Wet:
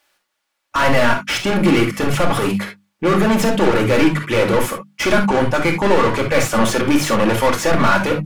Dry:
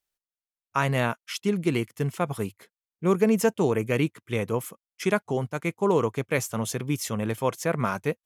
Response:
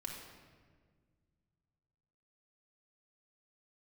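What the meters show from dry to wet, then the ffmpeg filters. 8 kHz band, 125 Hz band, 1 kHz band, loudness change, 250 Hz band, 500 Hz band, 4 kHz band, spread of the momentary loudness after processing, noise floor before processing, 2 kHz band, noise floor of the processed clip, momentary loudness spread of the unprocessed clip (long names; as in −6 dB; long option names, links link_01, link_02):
+9.0 dB, +7.0 dB, +12.5 dB, +10.0 dB, +10.0 dB, +9.0 dB, +14.5 dB, 5 LU, below −85 dBFS, +13.0 dB, −74 dBFS, 8 LU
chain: -filter_complex "[0:a]bandreject=frequency=50:width_type=h:width=6,bandreject=frequency=100:width_type=h:width=6,bandreject=frequency=150:width_type=h:width=6,bandreject=frequency=200:width_type=h:width=6,bandreject=frequency=250:width_type=h:width=6,bandreject=frequency=300:width_type=h:width=6,asplit=2[link_01][link_02];[link_02]highpass=frequency=720:poles=1,volume=34dB,asoftclip=type=tanh:threshold=-9.5dB[link_03];[link_01][link_03]amix=inputs=2:normalize=0,lowpass=frequency=2000:poles=1,volume=-6dB[link_04];[1:a]atrim=start_sample=2205,atrim=end_sample=3528[link_05];[link_04][link_05]afir=irnorm=-1:irlink=0,volume=6dB"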